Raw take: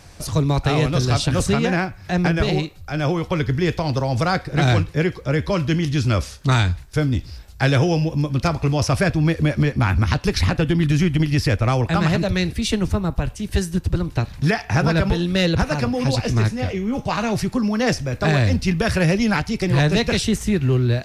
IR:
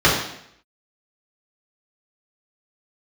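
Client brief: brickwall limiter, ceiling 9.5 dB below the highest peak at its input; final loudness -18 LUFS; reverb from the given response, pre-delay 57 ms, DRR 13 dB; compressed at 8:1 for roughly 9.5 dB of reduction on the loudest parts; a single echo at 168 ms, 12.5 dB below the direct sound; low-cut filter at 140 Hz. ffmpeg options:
-filter_complex "[0:a]highpass=140,acompressor=threshold=0.0562:ratio=8,alimiter=limit=0.075:level=0:latency=1,aecho=1:1:168:0.237,asplit=2[s0][s1];[1:a]atrim=start_sample=2205,adelay=57[s2];[s1][s2]afir=irnorm=-1:irlink=0,volume=0.015[s3];[s0][s3]amix=inputs=2:normalize=0,volume=4.47"

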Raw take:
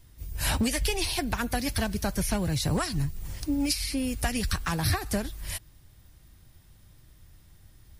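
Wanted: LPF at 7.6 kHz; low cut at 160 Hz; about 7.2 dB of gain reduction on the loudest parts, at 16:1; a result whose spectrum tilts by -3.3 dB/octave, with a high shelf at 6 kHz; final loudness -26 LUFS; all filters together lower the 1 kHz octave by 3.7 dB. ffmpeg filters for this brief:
-af "highpass=160,lowpass=7600,equalizer=f=1000:t=o:g=-5.5,highshelf=f=6000:g=6.5,acompressor=threshold=0.0316:ratio=16,volume=2.66"

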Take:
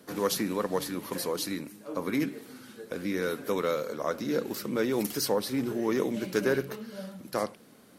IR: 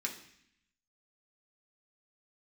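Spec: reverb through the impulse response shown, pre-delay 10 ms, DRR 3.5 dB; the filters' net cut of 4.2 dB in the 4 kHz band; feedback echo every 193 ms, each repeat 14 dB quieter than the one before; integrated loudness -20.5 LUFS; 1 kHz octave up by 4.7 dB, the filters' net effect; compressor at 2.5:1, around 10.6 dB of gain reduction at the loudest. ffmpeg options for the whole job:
-filter_complex "[0:a]equalizer=f=1000:t=o:g=6,equalizer=f=4000:t=o:g=-5.5,acompressor=threshold=0.0141:ratio=2.5,aecho=1:1:193|386:0.2|0.0399,asplit=2[s0][s1];[1:a]atrim=start_sample=2205,adelay=10[s2];[s1][s2]afir=irnorm=-1:irlink=0,volume=0.531[s3];[s0][s3]amix=inputs=2:normalize=0,volume=6.68"

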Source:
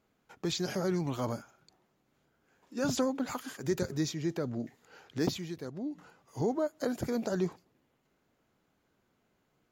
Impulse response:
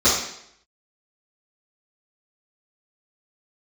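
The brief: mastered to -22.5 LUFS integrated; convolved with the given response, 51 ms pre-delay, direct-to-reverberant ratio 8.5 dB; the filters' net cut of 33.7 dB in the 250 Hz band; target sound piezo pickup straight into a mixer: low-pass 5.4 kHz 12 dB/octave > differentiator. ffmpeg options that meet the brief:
-filter_complex "[0:a]equalizer=f=250:t=o:g=-8,asplit=2[s0][s1];[1:a]atrim=start_sample=2205,adelay=51[s2];[s1][s2]afir=irnorm=-1:irlink=0,volume=0.0376[s3];[s0][s3]amix=inputs=2:normalize=0,lowpass=5400,aderivative,volume=22.4"

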